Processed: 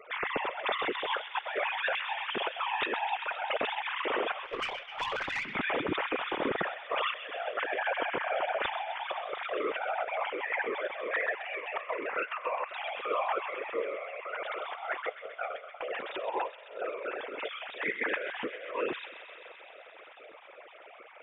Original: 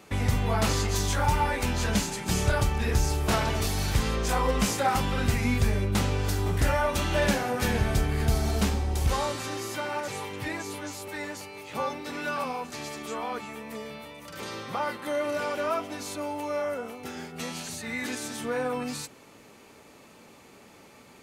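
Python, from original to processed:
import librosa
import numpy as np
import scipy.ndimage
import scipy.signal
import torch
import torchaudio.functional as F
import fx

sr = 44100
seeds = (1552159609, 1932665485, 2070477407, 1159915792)

y = fx.sine_speech(x, sr)
y = fx.whisperise(y, sr, seeds[0])
y = fx.over_compress(y, sr, threshold_db=-32.0, ratio=-0.5)
y = fx.echo_wet_highpass(y, sr, ms=130, feedback_pct=83, hz=2200.0, wet_db=-9)
y = fx.tube_stage(y, sr, drive_db=24.0, bias=0.3, at=(4.45, 5.55))
y = F.gain(torch.from_numpy(y), -1.5).numpy()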